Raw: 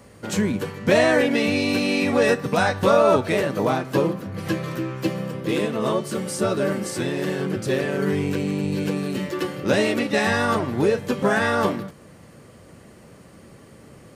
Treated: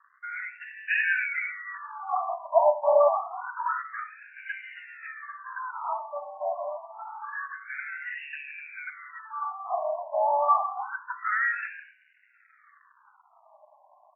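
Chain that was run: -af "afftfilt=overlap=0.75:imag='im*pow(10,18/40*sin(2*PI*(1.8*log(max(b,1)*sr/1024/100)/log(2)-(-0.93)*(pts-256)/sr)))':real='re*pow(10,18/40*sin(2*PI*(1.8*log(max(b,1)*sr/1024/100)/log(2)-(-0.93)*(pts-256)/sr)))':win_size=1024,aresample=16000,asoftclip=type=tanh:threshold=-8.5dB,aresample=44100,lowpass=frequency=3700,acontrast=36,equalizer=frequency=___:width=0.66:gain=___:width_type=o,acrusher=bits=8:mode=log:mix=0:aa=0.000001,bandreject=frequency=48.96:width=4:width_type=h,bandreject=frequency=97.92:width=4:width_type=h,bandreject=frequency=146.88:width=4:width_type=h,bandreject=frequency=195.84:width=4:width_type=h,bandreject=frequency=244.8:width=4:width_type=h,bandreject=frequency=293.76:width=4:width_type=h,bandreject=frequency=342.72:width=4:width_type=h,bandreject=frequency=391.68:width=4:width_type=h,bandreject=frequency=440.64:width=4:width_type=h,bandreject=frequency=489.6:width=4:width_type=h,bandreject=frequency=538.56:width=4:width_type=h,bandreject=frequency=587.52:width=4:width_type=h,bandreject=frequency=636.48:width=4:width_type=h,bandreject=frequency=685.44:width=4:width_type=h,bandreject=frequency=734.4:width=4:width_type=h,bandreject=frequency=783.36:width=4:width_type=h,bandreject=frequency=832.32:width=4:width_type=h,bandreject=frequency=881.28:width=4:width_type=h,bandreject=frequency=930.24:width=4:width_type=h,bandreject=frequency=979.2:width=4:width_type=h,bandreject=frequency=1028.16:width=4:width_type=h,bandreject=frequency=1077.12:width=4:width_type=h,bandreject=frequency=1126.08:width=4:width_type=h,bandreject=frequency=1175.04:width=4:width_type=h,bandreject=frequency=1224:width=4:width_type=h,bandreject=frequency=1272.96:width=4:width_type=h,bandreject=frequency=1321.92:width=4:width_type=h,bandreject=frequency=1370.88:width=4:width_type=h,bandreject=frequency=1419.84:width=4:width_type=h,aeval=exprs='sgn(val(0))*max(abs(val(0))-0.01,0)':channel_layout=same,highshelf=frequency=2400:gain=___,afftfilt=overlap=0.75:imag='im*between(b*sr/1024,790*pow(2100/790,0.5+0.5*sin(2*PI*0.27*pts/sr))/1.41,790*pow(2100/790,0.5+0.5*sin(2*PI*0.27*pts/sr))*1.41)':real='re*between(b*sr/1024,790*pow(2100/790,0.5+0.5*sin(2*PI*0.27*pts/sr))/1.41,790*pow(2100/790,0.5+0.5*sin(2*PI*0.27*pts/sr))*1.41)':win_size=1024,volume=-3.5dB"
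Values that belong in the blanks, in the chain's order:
570, 3.5, -7.5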